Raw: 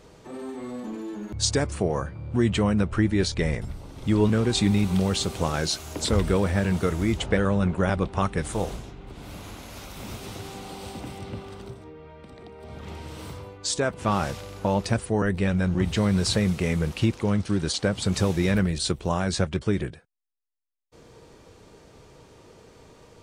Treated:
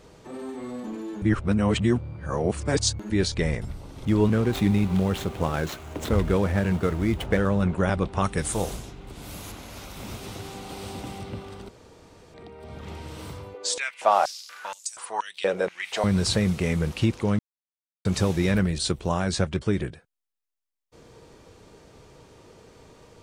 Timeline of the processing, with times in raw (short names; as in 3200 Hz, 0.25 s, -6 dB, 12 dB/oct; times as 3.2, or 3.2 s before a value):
1.22–3.1 reverse
4.05–7.62 median filter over 9 samples
8.24–9.52 high shelf 5700 Hz +11 dB
10.15–10.68 echo throw 0.54 s, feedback 15%, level -5.5 dB
11.69–12.34 room tone
13.54–16.04 stepped high-pass 4.2 Hz 460–7300 Hz
17.39–18.05 mute